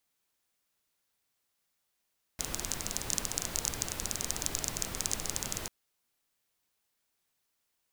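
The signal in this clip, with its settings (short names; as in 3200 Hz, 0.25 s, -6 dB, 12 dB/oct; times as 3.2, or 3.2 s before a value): rain from filtered ticks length 3.29 s, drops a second 18, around 6600 Hz, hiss -2 dB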